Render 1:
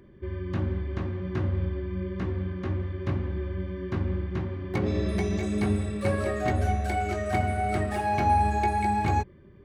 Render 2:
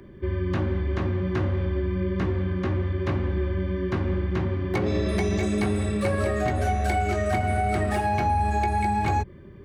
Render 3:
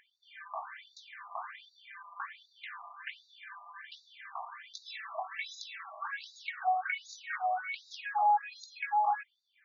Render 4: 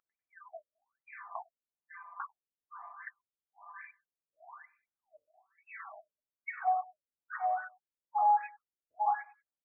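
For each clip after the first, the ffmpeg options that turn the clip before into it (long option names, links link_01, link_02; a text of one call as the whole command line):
ffmpeg -i in.wav -filter_complex "[0:a]acrossover=split=320[link_01][link_02];[link_01]alimiter=level_in=3.5dB:limit=-24dB:level=0:latency=1,volume=-3.5dB[link_03];[link_03][link_02]amix=inputs=2:normalize=0,acrossover=split=180[link_04][link_05];[link_05]acompressor=threshold=-30dB:ratio=6[link_06];[link_04][link_06]amix=inputs=2:normalize=0,volume=7dB" out.wav
ffmpeg -i in.wav -af "afftfilt=real='re*between(b*sr/1024,860*pow(5100/860,0.5+0.5*sin(2*PI*1.3*pts/sr))/1.41,860*pow(5100/860,0.5+0.5*sin(2*PI*1.3*pts/sr))*1.41)':imag='im*between(b*sr/1024,860*pow(5100/860,0.5+0.5*sin(2*PI*1.3*pts/sr))/1.41,860*pow(5100/860,0.5+0.5*sin(2*PI*1.3*pts/sr))*1.41)':win_size=1024:overlap=0.75" out.wav
ffmpeg -i in.wav -af "aecho=1:1:96|192:0.0891|0.0294,afftfilt=real='re*lt(b*sr/1024,570*pow(2700/570,0.5+0.5*sin(2*PI*1.1*pts/sr)))':imag='im*lt(b*sr/1024,570*pow(2700/570,0.5+0.5*sin(2*PI*1.1*pts/sr)))':win_size=1024:overlap=0.75" out.wav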